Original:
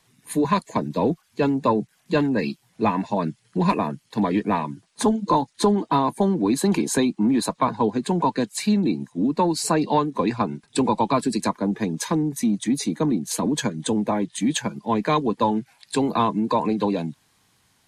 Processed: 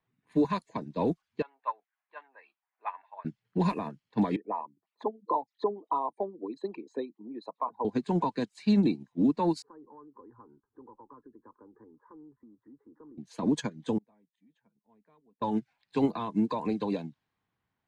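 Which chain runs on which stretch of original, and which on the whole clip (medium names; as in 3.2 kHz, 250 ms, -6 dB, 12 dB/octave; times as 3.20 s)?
1.42–3.25 s: high-pass 800 Hz 24 dB/octave + distance through air 480 m
4.36–7.85 s: resonances exaggerated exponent 2 + band-pass 450–4100 Hz + band-stop 1.6 kHz, Q 7.8
9.62–13.18 s: compression 3:1, threshold -31 dBFS + low-pass 1.4 kHz 24 dB/octave + static phaser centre 670 Hz, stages 6
13.98–15.42 s: comb 4.4 ms, depth 33% + inverted gate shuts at -26 dBFS, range -27 dB
whole clip: level-controlled noise filter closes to 2 kHz, open at -15.5 dBFS; peak limiter -15.5 dBFS; upward expansion 2.5:1, over -31 dBFS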